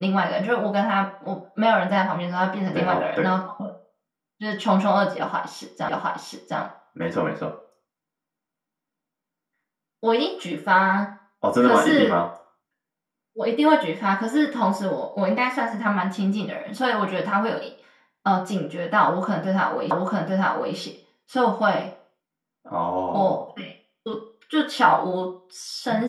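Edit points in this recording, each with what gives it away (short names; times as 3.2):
5.89 repeat of the last 0.71 s
19.91 repeat of the last 0.84 s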